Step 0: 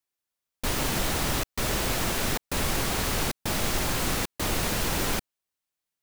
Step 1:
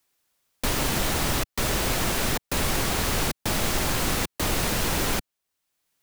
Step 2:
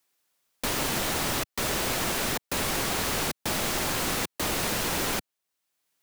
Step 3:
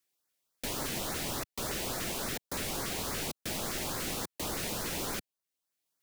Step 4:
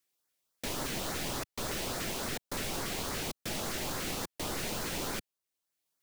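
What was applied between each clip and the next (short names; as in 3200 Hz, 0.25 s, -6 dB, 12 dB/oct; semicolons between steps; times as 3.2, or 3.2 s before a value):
three-band squash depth 40%; gain +2 dB
low shelf 110 Hz -11 dB; gain -1.5 dB
LFO notch saw up 3.5 Hz 730–3300 Hz; gain -6.5 dB
tracing distortion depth 0.063 ms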